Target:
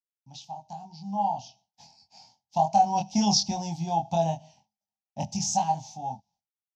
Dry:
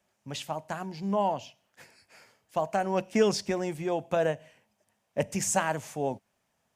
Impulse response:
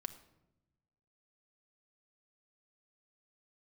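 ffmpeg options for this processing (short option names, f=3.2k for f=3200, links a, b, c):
-filter_complex "[0:a]highpass=56,agate=range=-33dB:threshold=-55dB:ratio=3:detection=peak,firequalizer=gain_entry='entry(190,0);entry(440,-29);entry(810,9);entry(1200,-26);entry(1800,-26);entry(2600,-12);entry(3800,1);entry(5800,6);entry(9000,-26);entry(13000,-23)':delay=0.05:min_phase=1,dynaudnorm=f=370:g=9:m=15.5dB,asplit=2[a][b];[b]adelay=24,volume=-3dB[c];[a][c]amix=inputs=2:normalize=0,volume=-8.5dB"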